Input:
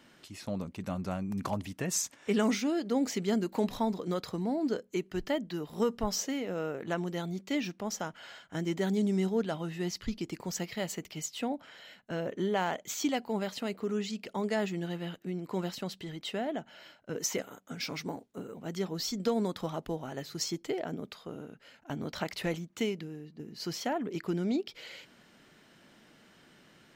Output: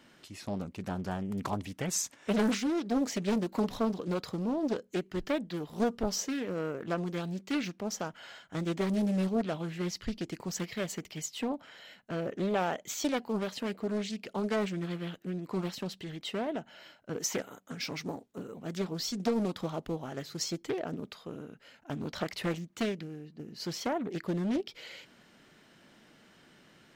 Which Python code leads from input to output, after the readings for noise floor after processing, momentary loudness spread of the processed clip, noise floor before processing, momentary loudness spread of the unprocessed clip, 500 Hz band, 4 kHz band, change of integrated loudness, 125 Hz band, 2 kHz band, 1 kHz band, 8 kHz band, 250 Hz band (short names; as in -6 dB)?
-61 dBFS, 11 LU, -61 dBFS, 12 LU, -0.5 dB, -0.5 dB, 0.0 dB, +0.5 dB, -0.5 dB, -0.5 dB, -0.5 dB, +0.5 dB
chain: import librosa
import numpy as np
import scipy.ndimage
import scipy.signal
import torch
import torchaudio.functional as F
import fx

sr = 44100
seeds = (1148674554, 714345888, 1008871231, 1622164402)

y = fx.doppler_dist(x, sr, depth_ms=0.67)